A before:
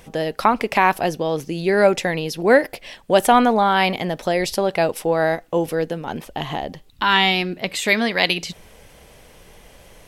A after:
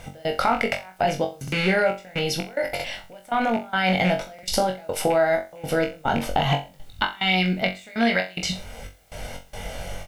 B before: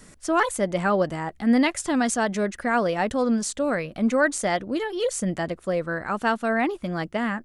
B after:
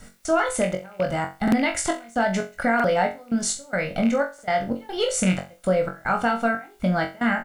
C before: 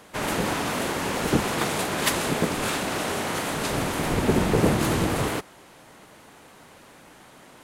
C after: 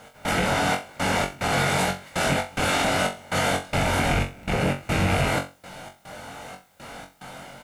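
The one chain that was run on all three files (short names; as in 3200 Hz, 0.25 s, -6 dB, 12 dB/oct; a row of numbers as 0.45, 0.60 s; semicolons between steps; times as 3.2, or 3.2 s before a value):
rattling part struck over -27 dBFS, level -18 dBFS; LPF 12000 Hz 12 dB/oct; high shelf 4700 Hz -4 dB; comb 1.4 ms, depth 53%; dynamic EQ 1900 Hz, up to +4 dB, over -34 dBFS, Q 2.4; AGC gain up to 7 dB; limiter -8.5 dBFS; compressor, threshold -22 dBFS; step gate "x..xxxxxx...xx" 181 bpm -24 dB; added noise white -68 dBFS; on a send: flutter echo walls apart 3.7 m, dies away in 0.28 s; on the sum: stuck buffer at 1.43/2.75/4.34, samples 2048, times 1; match loudness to -24 LUFS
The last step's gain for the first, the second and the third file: +3.0, +2.0, +1.0 dB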